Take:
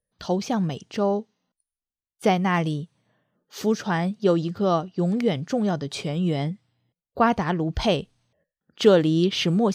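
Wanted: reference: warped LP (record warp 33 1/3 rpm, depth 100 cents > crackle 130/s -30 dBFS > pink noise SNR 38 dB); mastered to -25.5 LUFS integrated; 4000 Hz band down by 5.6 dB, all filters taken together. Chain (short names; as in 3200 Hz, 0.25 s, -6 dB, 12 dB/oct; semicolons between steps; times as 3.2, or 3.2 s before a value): bell 4000 Hz -8 dB; record warp 33 1/3 rpm, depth 100 cents; crackle 130/s -30 dBFS; pink noise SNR 38 dB; gain -1.5 dB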